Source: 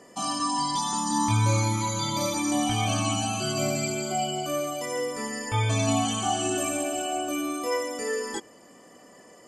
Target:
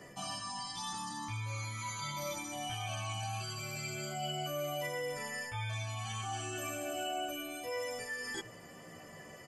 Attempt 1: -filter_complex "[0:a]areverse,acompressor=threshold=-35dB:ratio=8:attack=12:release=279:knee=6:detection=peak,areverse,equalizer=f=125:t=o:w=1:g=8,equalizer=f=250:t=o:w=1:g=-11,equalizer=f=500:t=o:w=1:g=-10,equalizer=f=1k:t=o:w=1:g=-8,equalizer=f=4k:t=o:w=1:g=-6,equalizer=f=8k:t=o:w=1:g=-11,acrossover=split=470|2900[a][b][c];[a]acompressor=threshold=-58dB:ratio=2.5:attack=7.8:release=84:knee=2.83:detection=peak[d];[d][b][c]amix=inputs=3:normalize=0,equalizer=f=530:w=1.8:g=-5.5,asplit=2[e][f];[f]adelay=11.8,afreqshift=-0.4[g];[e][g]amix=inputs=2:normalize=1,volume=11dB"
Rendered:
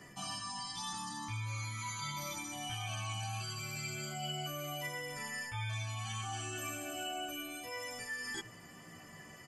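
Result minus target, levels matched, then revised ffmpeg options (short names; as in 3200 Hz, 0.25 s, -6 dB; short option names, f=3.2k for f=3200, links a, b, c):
500 Hz band -6.0 dB
-filter_complex "[0:a]areverse,acompressor=threshold=-35dB:ratio=8:attack=12:release=279:knee=6:detection=peak,areverse,equalizer=f=125:t=o:w=1:g=8,equalizer=f=250:t=o:w=1:g=-11,equalizer=f=500:t=o:w=1:g=-10,equalizer=f=1k:t=o:w=1:g=-8,equalizer=f=4k:t=o:w=1:g=-6,equalizer=f=8k:t=o:w=1:g=-11,acrossover=split=470|2900[a][b][c];[a]acompressor=threshold=-58dB:ratio=2.5:attack=7.8:release=84:knee=2.83:detection=peak[d];[d][b][c]amix=inputs=3:normalize=0,equalizer=f=530:w=1.8:g=4,asplit=2[e][f];[f]adelay=11.8,afreqshift=-0.4[g];[e][g]amix=inputs=2:normalize=1,volume=11dB"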